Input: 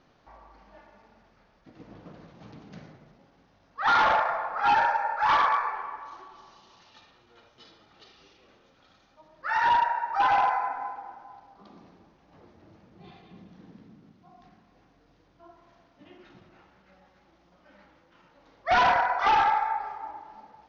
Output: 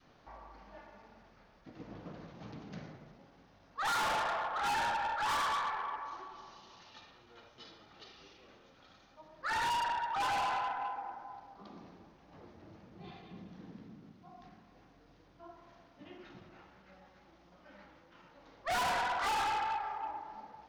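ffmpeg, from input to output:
ffmpeg -i in.wav -af "adynamicequalizer=threshold=0.0178:dfrequency=490:dqfactor=0.7:tfrequency=490:tqfactor=0.7:attack=5:release=100:ratio=0.375:range=2:mode=cutabove:tftype=bell,asoftclip=type=tanh:threshold=-31dB" out.wav

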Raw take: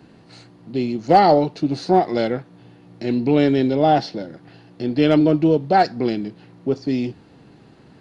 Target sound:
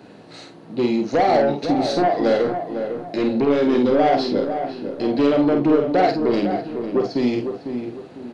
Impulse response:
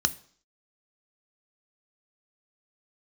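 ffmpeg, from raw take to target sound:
-filter_complex "[0:a]highpass=frequency=250:poles=1,equalizer=frequency=540:width_type=o:width=1.1:gain=5.5,acompressor=threshold=-16dB:ratio=4,flanger=delay=9.4:depth=4.4:regen=-70:speed=0.49:shape=triangular,asoftclip=type=tanh:threshold=-21.5dB,asplit=2[link_01][link_02];[link_02]adelay=47,volume=-5.5dB[link_03];[link_01][link_03]amix=inputs=2:normalize=0,asplit=2[link_04][link_05];[link_05]adelay=482,lowpass=frequency=1400:poles=1,volume=-7dB,asplit=2[link_06][link_07];[link_07]adelay=482,lowpass=frequency=1400:poles=1,volume=0.37,asplit=2[link_08][link_09];[link_09]adelay=482,lowpass=frequency=1400:poles=1,volume=0.37,asplit=2[link_10][link_11];[link_11]adelay=482,lowpass=frequency=1400:poles=1,volume=0.37[link_12];[link_04][link_06][link_08][link_10][link_12]amix=inputs=5:normalize=0,asetrate=42336,aresample=44100,volume=8.5dB"

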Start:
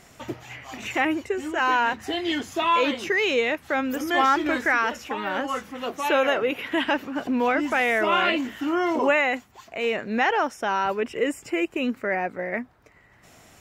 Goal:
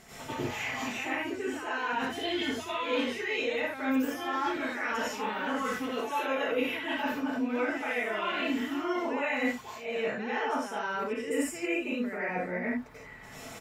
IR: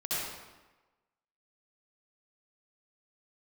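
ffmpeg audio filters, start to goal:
-filter_complex "[0:a]aecho=1:1:4.6:0.37,areverse,acompressor=threshold=-35dB:ratio=16,areverse[link_01];[1:a]atrim=start_sample=2205,atrim=end_sample=6174,asetrate=32634,aresample=44100[link_02];[link_01][link_02]afir=irnorm=-1:irlink=0"

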